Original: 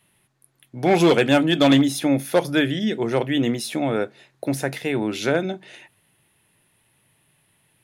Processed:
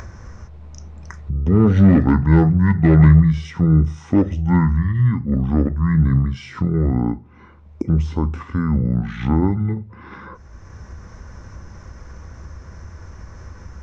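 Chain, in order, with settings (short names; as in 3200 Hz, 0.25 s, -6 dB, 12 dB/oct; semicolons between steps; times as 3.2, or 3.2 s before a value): RIAA curve playback; upward compressor, threshold -16 dBFS; wide varispeed 0.567×; gain -1 dB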